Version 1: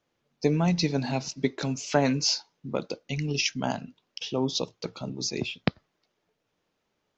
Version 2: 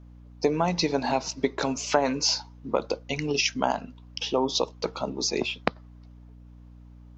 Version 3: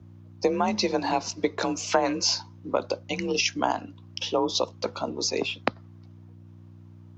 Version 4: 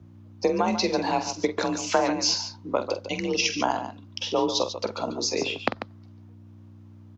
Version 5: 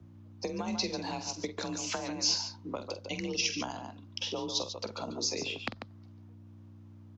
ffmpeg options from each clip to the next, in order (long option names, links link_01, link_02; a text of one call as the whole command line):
ffmpeg -i in.wav -af "equalizer=frequency=125:width_type=o:width=1:gain=-11,equalizer=frequency=500:width_type=o:width=1:gain=4,equalizer=frequency=1000:width_type=o:width=1:gain=9,acompressor=threshold=-25dB:ratio=2.5,aeval=exprs='val(0)+0.00316*(sin(2*PI*60*n/s)+sin(2*PI*2*60*n/s)/2+sin(2*PI*3*60*n/s)/3+sin(2*PI*4*60*n/s)/4+sin(2*PI*5*60*n/s)/5)':channel_layout=same,volume=3.5dB" out.wav
ffmpeg -i in.wav -af "afreqshift=38" out.wav
ffmpeg -i in.wav -af "aecho=1:1:46.65|142.9:0.316|0.316" out.wav
ffmpeg -i in.wav -filter_complex "[0:a]acrossover=split=210|3000[link_01][link_02][link_03];[link_02]acompressor=threshold=-32dB:ratio=6[link_04];[link_01][link_04][link_03]amix=inputs=3:normalize=0,volume=-4dB" out.wav